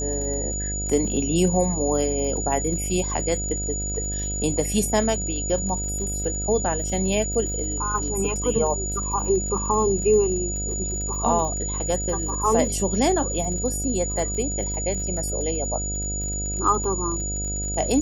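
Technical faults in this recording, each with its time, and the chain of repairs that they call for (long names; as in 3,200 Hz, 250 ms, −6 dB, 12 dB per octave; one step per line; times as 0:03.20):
mains buzz 50 Hz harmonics 15 −30 dBFS
surface crackle 47 per second −32 dBFS
whistle 6,900 Hz −28 dBFS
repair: click removal
hum removal 50 Hz, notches 15
notch filter 6,900 Hz, Q 30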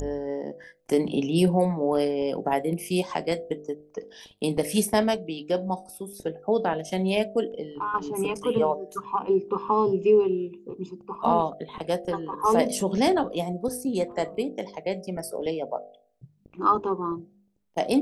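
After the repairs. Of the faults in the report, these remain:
none of them is left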